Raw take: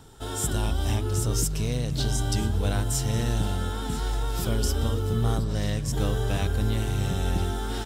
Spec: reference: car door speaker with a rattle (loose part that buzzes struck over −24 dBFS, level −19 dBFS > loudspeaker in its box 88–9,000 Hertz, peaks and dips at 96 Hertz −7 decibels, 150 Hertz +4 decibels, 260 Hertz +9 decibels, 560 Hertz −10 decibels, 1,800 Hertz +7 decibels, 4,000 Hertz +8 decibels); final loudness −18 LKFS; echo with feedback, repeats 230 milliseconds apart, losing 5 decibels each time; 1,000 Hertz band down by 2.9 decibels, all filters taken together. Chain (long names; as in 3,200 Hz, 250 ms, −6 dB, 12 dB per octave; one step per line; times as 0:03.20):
parametric band 1,000 Hz −3.5 dB
repeating echo 230 ms, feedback 56%, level −5 dB
loose part that buzzes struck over −24 dBFS, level −19 dBFS
loudspeaker in its box 88–9,000 Hz, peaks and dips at 96 Hz −7 dB, 150 Hz +4 dB, 260 Hz +9 dB, 560 Hz −10 dB, 1,800 Hz +7 dB, 4,000 Hz +8 dB
level +7.5 dB